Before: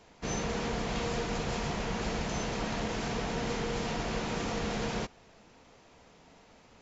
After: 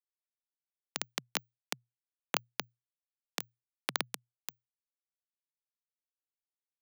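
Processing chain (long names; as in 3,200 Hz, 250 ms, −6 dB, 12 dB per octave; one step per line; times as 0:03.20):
echo with a time of its own for lows and highs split 1,300 Hz, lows 133 ms, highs 420 ms, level −13.5 dB
brick-wall band-pass 660–2,000 Hz
bit reduction 5 bits
frequency shifter +120 Hz
level +14.5 dB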